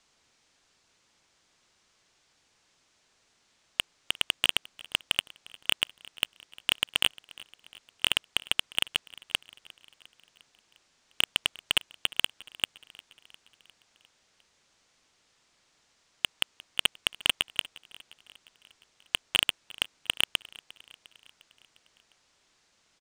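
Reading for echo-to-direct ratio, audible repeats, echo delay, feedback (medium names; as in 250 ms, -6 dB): -20.0 dB, 3, 353 ms, 60%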